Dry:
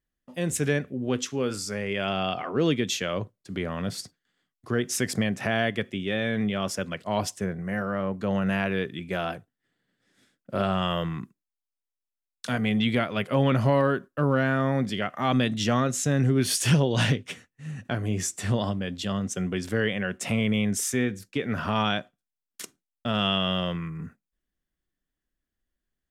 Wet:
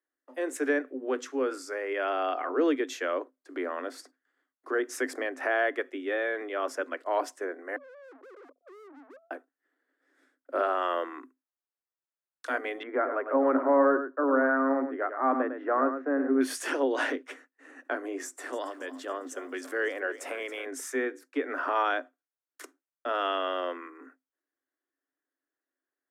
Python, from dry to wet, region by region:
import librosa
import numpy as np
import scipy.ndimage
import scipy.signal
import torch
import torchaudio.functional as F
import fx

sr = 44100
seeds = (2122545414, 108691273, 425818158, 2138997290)

y = fx.chain(x, sr, fx.sine_speech(),
    fx.steep_lowpass(hz=530.0, slope=96),
    fx.tube_stage(drive_db=49.0, bias=0.8), at=(7.76, 9.31))
y = fx.chain(y, sr, fx.lowpass(hz=1600.0, slope=24),
    fx.echo_single(ms=104, db=-8.5), at=(12.83, 16.41))
y = fx.chain(y, sr, fx.harmonic_tremolo(hz=1.1, depth_pct=50, crossover_hz=1400.0),
    fx.high_shelf(hz=6300.0, db=9.5),
    fx.echo_crushed(ms=276, feedback_pct=55, bits=9, wet_db=-14.0), at=(18.25, 20.66))
y = scipy.signal.sosfilt(scipy.signal.cheby1(10, 1.0, 260.0, 'highpass', fs=sr, output='sos'), y)
y = fx.high_shelf_res(y, sr, hz=2200.0, db=-9.5, q=1.5)